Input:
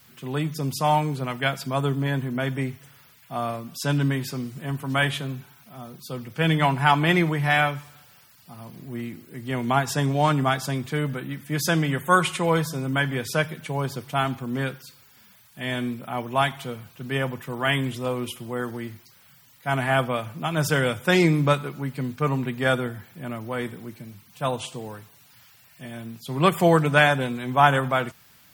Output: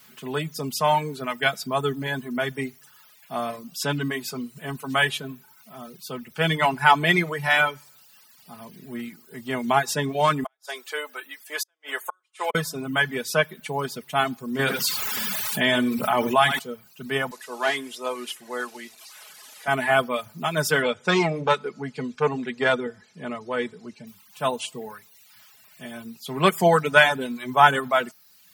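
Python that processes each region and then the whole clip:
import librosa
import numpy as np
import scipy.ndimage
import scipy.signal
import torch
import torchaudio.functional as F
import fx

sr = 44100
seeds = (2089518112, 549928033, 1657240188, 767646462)

y = fx.chain(x, sr, fx.bessel_highpass(hz=610.0, order=6),
    fx.gate_flip(shuts_db=-17.0, range_db=-41), at=(10.44, 12.55))
y = fx.chain(y, sr, fx.echo_single(ms=80, db=-10.5),
    fx.env_flatten(amount_pct=70), at=(14.59, 16.59))
y = fx.chain(y, sr, fx.delta_mod(bps=64000, step_db=-38.5),
    fx.highpass(hz=370.0, slope=12), at=(17.31, 19.68))
y = fx.chain(y, sr, fx.lowpass(hz=7300.0, slope=24),
    fx.peak_eq(hz=460.0, db=6.0, octaves=0.35),
    fx.transformer_sat(knee_hz=620.0), at=(20.82, 24.07))
y = y + 0.46 * np.pad(y, (int(4.7 * sr / 1000.0), 0))[:len(y)]
y = fx.dereverb_blind(y, sr, rt60_s=0.8)
y = fx.low_shelf(y, sr, hz=170.0, db=-11.0)
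y = y * librosa.db_to_amplitude(2.0)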